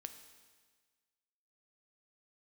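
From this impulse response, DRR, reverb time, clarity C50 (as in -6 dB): 7.5 dB, 1.5 s, 9.5 dB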